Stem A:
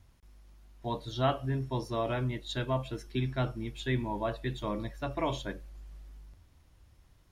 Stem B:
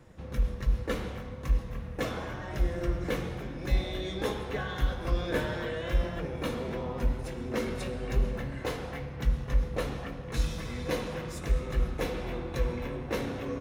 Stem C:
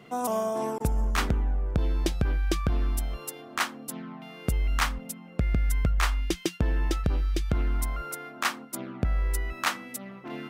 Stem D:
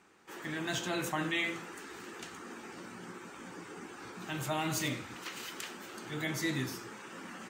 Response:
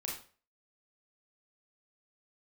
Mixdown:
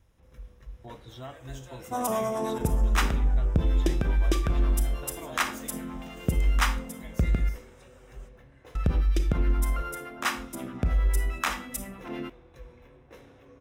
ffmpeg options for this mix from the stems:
-filter_complex "[0:a]acompressor=threshold=-43dB:ratio=2,volume=-3.5dB[link_01];[1:a]equalizer=frequency=200:width_type=o:width=0.77:gain=-6,volume=-17.5dB[link_02];[2:a]acrossover=split=610[link_03][link_04];[link_03]aeval=exprs='val(0)*(1-0.7/2+0.7/2*cos(2*PI*9.6*n/s))':channel_layout=same[link_05];[link_04]aeval=exprs='val(0)*(1-0.7/2-0.7/2*cos(2*PI*9.6*n/s))':channel_layout=same[link_06];[link_05][link_06]amix=inputs=2:normalize=0,adelay=1800,volume=0dB,asplit=3[link_07][link_08][link_09];[link_07]atrim=end=7.49,asetpts=PTS-STARTPTS,afade=type=out:start_time=7.486:duration=0.004:curve=hsin[link_10];[link_08]atrim=start=7.49:end=8.75,asetpts=PTS-STARTPTS,volume=0[link_11];[link_09]atrim=start=8.75,asetpts=PTS-STARTPTS,afade=type=in:duration=0.004:curve=hsin[link_12];[link_10][link_11][link_12]concat=n=3:v=0:a=1,asplit=2[link_13][link_14];[link_14]volume=-3.5dB[link_15];[3:a]highpass=frequency=530:width_type=q:width=4.9,highshelf=frequency=5900:gain=12,adelay=800,volume=-17.5dB[link_16];[4:a]atrim=start_sample=2205[link_17];[link_15][link_17]afir=irnorm=-1:irlink=0[link_18];[link_01][link_02][link_13][link_16][link_18]amix=inputs=5:normalize=0,bandreject=frequency=4400:width=7"

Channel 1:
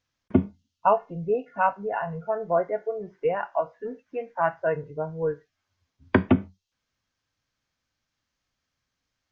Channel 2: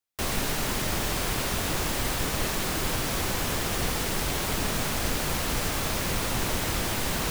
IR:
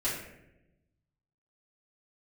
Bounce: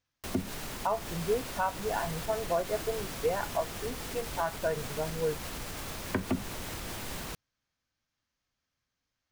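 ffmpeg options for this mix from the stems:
-filter_complex "[0:a]volume=-4dB[link_01];[1:a]alimiter=limit=-19.5dB:level=0:latency=1:release=92,adelay=50,volume=-9dB[link_02];[link_01][link_02]amix=inputs=2:normalize=0,alimiter=limit=-19dB:level=0:latency=1:release=171"

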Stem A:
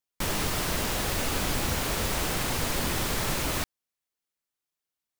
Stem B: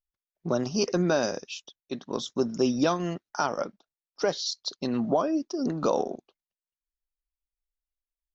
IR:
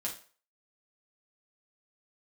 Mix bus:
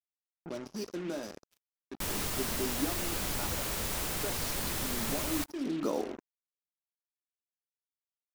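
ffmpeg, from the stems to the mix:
-filter_complex "[0:a]adelay=1800,volume=-8.5dB,asplit=2[link_01][link_02];[link_02]volume=-18dB[link_03];[1:a]flanger=delay=6.1:depth=9.2:regen=-86:speed=0.63:shape=sinusoidal,equalizer=frequency=300:width_type=o:width=0.73:gain=11,volume=-9dB,afade=type=in:start_time=5.51:duration=0.24:silence=0.446684,asplit=2[link_04][link_05];[link_05]volume=-7dB[link_06];[2:a]atrim=start_sample=2205[link_07];[link_03][link_06]amix=inputs=2:normalize=0[link_08];[link_08][link_07]afir=irnorm=-1:irlink=0[link_09];[link_01][link_04][link_09]amix=inputs=3:normalize=0,highshelf=frequency=6600:gain=6.5,acrusher=bits=6:mix=0:aa=0.5"

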